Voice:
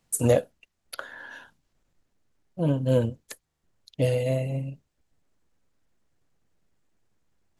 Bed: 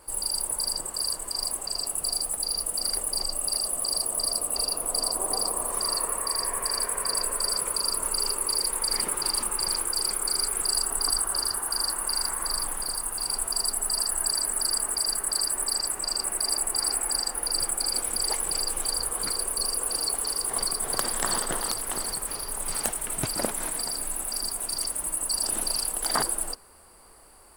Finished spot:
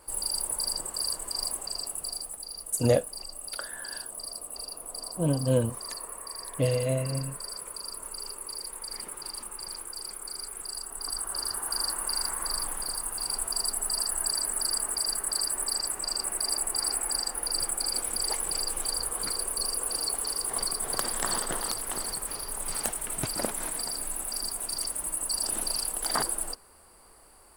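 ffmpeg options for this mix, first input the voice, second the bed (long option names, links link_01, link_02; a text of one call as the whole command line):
ffmpeg -i stem1.wav -i stem2.wav -filter_complex "[0:a]adelay=2600,volume=-2dB[link_01];[1:a]volume=7dB,afade=type=out:start_time=1.44:duration=1:silence=0.334965,afade=type=in:start_time=10.92:duration=0.8:silence=0.354813[link_02];[link_01][link_02]amix=inputs=2:normalize=0" out.wav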